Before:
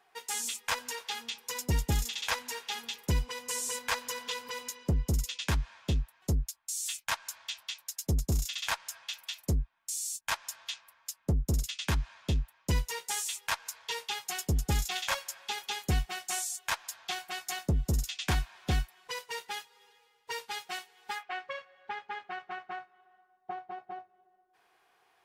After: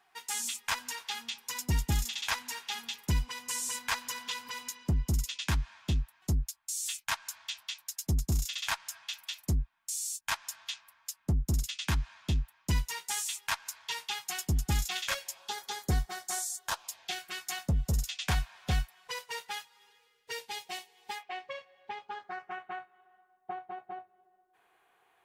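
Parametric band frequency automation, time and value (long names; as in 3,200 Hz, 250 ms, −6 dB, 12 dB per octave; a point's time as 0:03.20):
parametric band −12.5 dB 0.5 octaves
0:14.90 490 Hz
0:15.56 2,700 Hz
0:16.61 2,700 Hz
0:17.79 320 Hz
0:19.51 320 Hz
0:20.54 1,400 Hz
0:21.92 1,400 Hz
0:22.63 5,200 Hz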